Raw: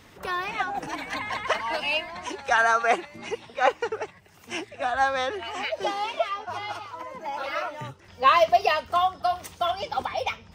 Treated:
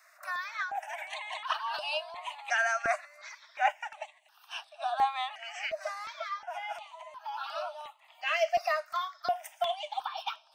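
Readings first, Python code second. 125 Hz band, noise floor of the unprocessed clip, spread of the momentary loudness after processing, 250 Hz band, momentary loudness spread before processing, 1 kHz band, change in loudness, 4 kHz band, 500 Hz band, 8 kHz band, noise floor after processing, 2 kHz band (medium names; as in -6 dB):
under -20 dB, -52 dBFS, 14 LU, under -20 dB, 14 LU, -8.0 dB, -7.5 dB, -6.0 dB, -8.5 dB, -5.5 dB, -62 dBFS, -6.0 dB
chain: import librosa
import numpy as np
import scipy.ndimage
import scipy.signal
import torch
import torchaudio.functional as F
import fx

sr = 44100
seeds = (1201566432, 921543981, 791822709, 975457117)

y = scipy.signal.sosfilt(scipy.signal.cheby1(10, 1.0, 600.0, 'highpass', fs=sr, output='sos'), x)
y = fx.phaser_held(y, sr, hz=2.8, low_hz=860.0, high_hz=6900.0)
y = y * librosa.db_to_amplitude(-2.0)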